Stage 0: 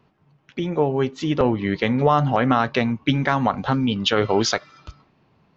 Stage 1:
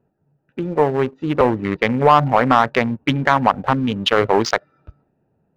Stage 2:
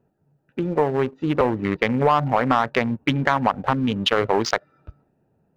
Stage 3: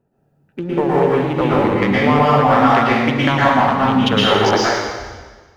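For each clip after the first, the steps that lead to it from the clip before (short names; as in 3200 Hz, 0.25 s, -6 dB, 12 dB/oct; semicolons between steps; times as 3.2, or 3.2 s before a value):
Wiener smoothing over 41 samples; graphic EQ 500/1000/2000 Hz +4/+9/+7 dB; sample leveller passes 1; gain -3.5 dB
compressor 2:1, threshold -18 dBFS, peak gain reduction 6.5 dB
plate-style reverb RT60 1.4 s, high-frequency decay 1×, pre-delay 0.1 s, DRR -7.5 dB; gain -1 dB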